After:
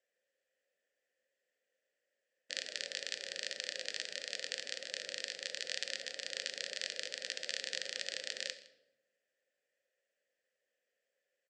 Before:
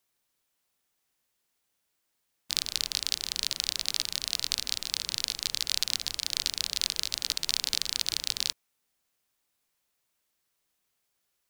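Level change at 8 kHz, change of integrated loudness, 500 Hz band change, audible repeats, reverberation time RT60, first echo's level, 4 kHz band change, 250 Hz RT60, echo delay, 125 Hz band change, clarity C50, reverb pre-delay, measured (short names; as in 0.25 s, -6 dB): -13.0 dB, -10.5 dB, +6.5 dB, 1, 0.95 s, -21.5 dB, -11.5 dB, 1.3 s, 0.161 s, under -20 dB, 13.0 dB, 5 ms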